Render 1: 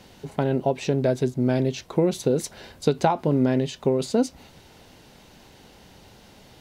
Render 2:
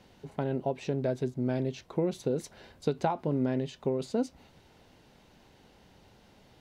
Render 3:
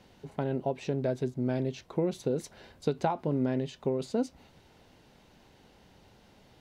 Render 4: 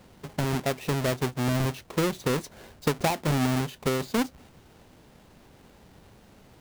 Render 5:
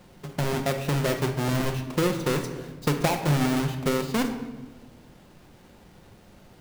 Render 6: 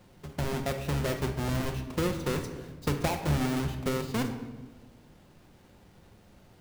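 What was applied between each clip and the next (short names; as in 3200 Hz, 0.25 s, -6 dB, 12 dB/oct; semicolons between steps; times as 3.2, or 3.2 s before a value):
high shelf 4400 Hz -7 dB; gain -8 dB
nothing audible
half-waves squared off
shoebox room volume 700 m³, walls mixed, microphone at 0.91 m
octaver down 1 oct, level -4 dB; gain -5.5 dB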